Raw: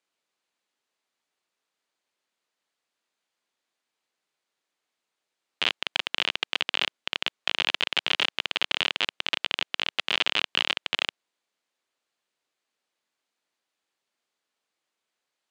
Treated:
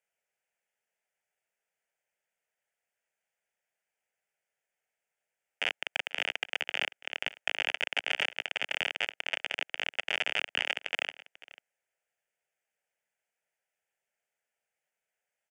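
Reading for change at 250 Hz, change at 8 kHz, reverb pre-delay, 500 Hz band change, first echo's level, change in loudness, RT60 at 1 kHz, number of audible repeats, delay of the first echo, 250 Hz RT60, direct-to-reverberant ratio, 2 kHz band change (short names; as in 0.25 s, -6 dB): -12.5 dB, -5.5 dB, none, -2.5 dB, -19.5 dB, -5.5 dB, none, 1, 0.492 s, none, none, -2.5 dB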